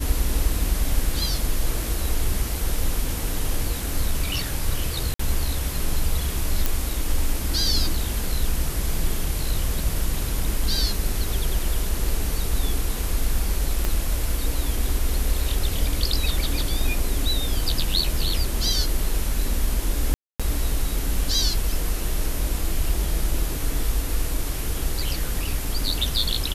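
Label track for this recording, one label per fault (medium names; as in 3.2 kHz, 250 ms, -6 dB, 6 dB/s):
5.140000	5.190000	dropout 54 ms
6.660000	6.660000	pop
9.790000	9.790000	dropout 2.5 ms
13.850000	13.850000	pop -11 dBFS
20.140000	20.400000	dropout 256 ms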